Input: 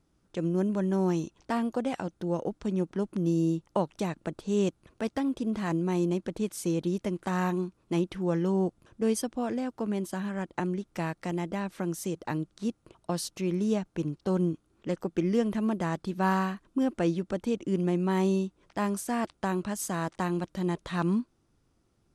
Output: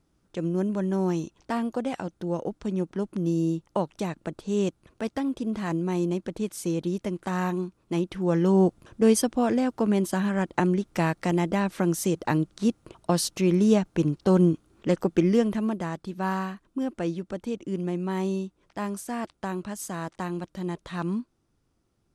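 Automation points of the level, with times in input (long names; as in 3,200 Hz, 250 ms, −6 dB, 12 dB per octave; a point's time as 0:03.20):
0:08.03 +1 dB
0:08.61 +7.5 dB
0:15.11 +7.5 dB
0:15.94 −2 dB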